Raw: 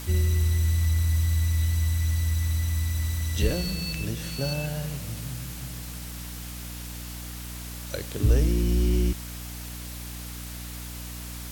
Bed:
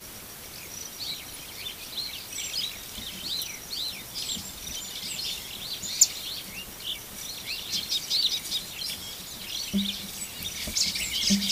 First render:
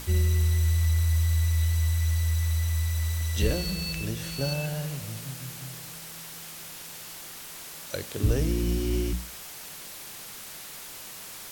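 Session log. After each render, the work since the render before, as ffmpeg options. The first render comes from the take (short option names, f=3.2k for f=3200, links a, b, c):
-af "bandreject=f=60:t=h:w=6,bandreject=f=120:t=h:w=6,bandreject=f=180:t=h:w=6,bandreject=f=240:t=h:w=6,bandreject=f=300:t=h:w=6"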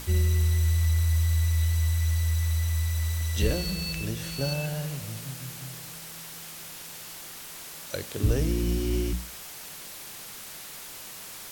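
-af anull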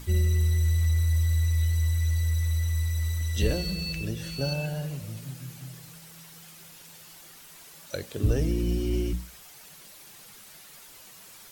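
-af "afftdn=nr=9:nf=-42"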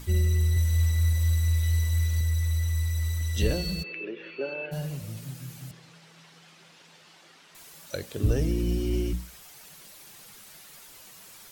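-filter_complex "[0:a]asettb=1/sr,asplit=3[a][b][c];[a]atrim=end=0.524[d];[b]atrim=start=0.52:end=2.21,asetpts=PTS-STARTPTS,afade=t=in:d=0.004:c=qsin,afade=t=out:st=1.686:d=0.004:c=qsin,asplit=2[e][f];[f]adelay=45,volume=-2.5dB[g];[e][g]amix=inputs=2:normalize=0,atrim=end_sample=74529[h];[c]atrim=start=2.206[i];[d][h]acrossfade=d=0.004:c1=hsin:c2=qsin[j];[j][i]acrossfade=d=0.004:c1=qsin:c2=hsin,asplit=3[k][l][m];[k]afade=t=out:st=3.82:d=0.02[n];[l]highpass=f=310:w=0.5412,highpass=f=310:w=1.3066,equalizer=f=390:t=q:w=4:g=9,equalizer=f=740:t=q:w=4:g=-8,equalizer=f=2.4k:t=q:w=4:g=7,lowpass=f=2.7k:w=0.5412,lowpass=f=2.7k:w=1.3066,afade=t=in:st=3.82:d=0.02,afade=t=out:st=4.71:d=0.02[o];[m]afade=t=in:st=4.71:d=0.02[p];[n][o][p]amix=inputs=3:normalize=0,asettb=1/sr,asplit=3[q][r][s];[q]atrim=end=5.714[t];[r]atrim=start=5.71:end=7.55,asetpts=PTS-STARTPTS,afade=t=in:d=0.004:c=qsin,afade=t=out:st=1.836:d=0.004:c=qsin,highpass=190,lowpass=4.3k[u];[s]atrim=start=7.546[v];[t][u]acrossfade=d=0.004:c1=hsin:c2=qsin[w];[w][v]acrossfade=d=0.004:c1=qsin:c2=hsin"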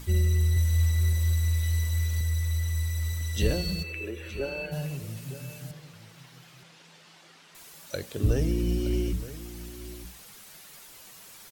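-af "aecho=1:1:920:0.178"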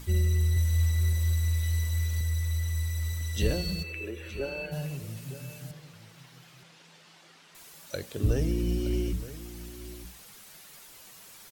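-af "volume=-1.5dB"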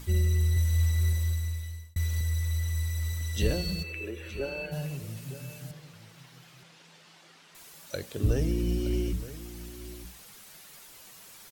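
-filter_complex "[0:a]asplit=2[a][b];[a]atrim=end=1.96,asetpts=PTS-STARTPTS,afade=t=out:st=1.1:d=0.86[c];[b]atrim=start=1.96,asetpts=PTS-STARTPTS,afade=t=in:d=0.004:c=hsin[d];[c][d]concat=n=2:v=0:a=1"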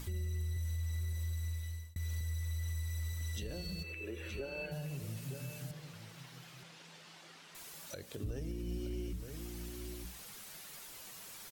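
-af "acompressor=threshold=-44dB:ratio=1.5,alimiter=level_in=7.5dB:limit=-24dB:level=0:latency=1:release=255,volume=-7.5dB"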